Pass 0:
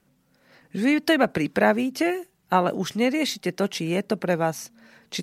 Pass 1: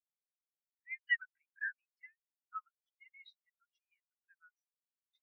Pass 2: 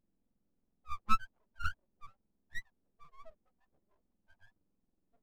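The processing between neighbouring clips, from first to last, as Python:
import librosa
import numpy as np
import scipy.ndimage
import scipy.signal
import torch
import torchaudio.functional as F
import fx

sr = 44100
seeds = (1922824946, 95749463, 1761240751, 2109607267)

y1 = scipy.signal.sosfilt(scipy.signal.butter(6, 1300.0, 'highpass', fs=sr, output='sos'), x)
y1 = fx.spectral_expand(y1, sr, expansion=4.0)
y1 = y1 * librosa.db_to_amplitude(-8.0)
y2 = fx.octave_mirror(y1, sr, pivot_hz=1100.0)
y2 = fx.vibrato(y2, sr, rate_hz=4.7, depth_cents=80.0)
y2 = np.abs(y2)
y2 = y2 * librosa.db_to_amplitude(7.5)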